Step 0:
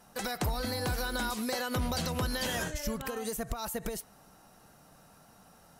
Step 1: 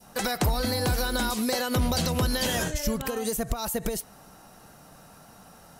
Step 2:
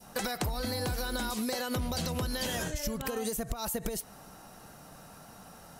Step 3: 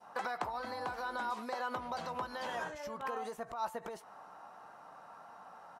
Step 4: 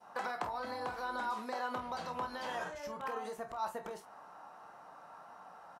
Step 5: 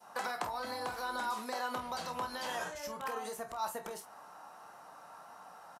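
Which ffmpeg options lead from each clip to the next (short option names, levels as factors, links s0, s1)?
-af "acontrast=89,adynamicequalizer=threshold=0.00891:dfrequency=1400:dqfactor=0.78:tfrequency=1400:tqfactor=0.78:attack=5:release=100:ratio=0.375:range=2:mode=cutabove:tftype=bell"
-af "acompressor=threshold=0.0316:ratio=6"
-filter_complex "[0:a]bandpass=f=1000:t=q:w=2.1:csg=0,asplit=2[s0][s1];[s1]adelay=17,volume=0.224[s2];[s0][s2]amix=inputs=2:normalize=0,volume=1.68"
-af "aecho=1:1:28|48:0.355|0.266,volume=0.891"
-filter_complex "[0:a]aresample=32000,aresample=44100,acrossover=split=110[s0][s1];[s1]crystalizer=i=2.5:c=0[s2];[s0][s2]amix=inputs=2:normalize=0"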